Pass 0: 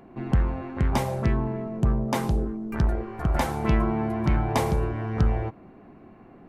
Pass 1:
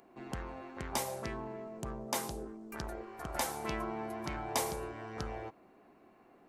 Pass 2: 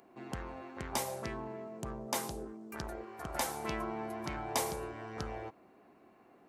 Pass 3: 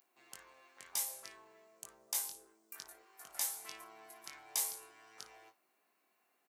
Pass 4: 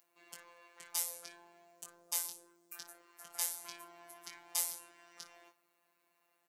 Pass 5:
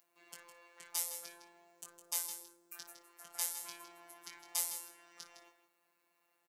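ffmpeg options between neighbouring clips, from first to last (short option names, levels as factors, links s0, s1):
-af "bass=f=250:g=-14,treble=f=4000:g=12,volume=0.376"
-af "highpass=45"
-af "aderivative,aecho=1:1:21|57:0.562|0.158,volume=1.12"
-af "afftfilt=real='hypot(re,im)*cos(PI*b)':imag='0':win_size=1024:overlap=0.75,volume=1.58"
-af "aecho=1:1:159:0.299,volume=0.891"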